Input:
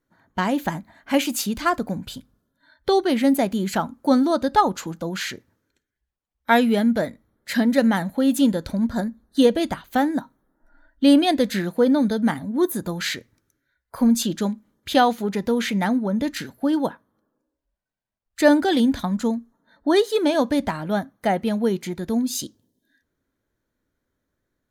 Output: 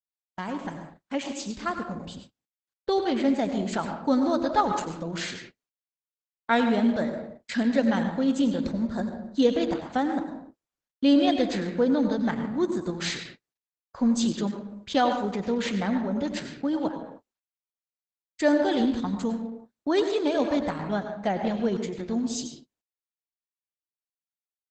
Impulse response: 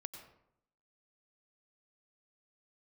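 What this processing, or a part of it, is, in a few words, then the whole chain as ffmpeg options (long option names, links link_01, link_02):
speakerphone in a meeting room: -filter_complex "[1:a]atrim=start_sample=2205[link_01];[0:a][link_01]afir=irnorm=-1:irlink=0,asplit=2[link_02][link_03];[link_03]adelay=150,highpass=300,lowpass=3400,asoftclip=type=hard:threshold=-16dB,volume=-22dB[link_04];[link_02][link_04]amix=inputs=2:normalize=0,dynaudnorm=framelen=140:gausssize=31:maxgain=6dB,agate=range=-42dB:threshold=-38dB:ratio=16:detection=peak,volume=-6dB" -ar 48000 -c:a libopus -b:a 12k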